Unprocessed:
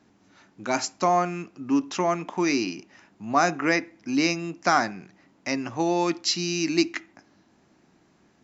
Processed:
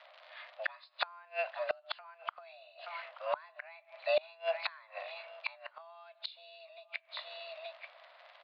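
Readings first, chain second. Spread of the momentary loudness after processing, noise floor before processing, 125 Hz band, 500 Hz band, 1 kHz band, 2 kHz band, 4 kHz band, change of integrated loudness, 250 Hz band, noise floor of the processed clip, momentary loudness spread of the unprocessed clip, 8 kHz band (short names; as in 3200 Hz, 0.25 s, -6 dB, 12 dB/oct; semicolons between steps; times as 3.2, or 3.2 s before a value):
17 LU, -62 dBFS, under -40 dB, -9.5 dB, -16.5 dB, -11.5 dB, -12.0 dB, -14.5 dB, under -40 dB, -65 dBFS, 12 LU, n/a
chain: nonlinear frequency compression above 2000 Hz 1.5:1; compressor 16:1, threshold -25 dBFS, peak gain reduction 11 dB; crackle 76/s -44 dBFS; mistuned SSB +330 Hz 290–3500 Hz; high shelf 2800 Hz +8.5 dB; on a send: echo 0.877 s -21.5 dB; on the sum: flipped gate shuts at -24 dBFS, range -29 dB; gain +4.5 dB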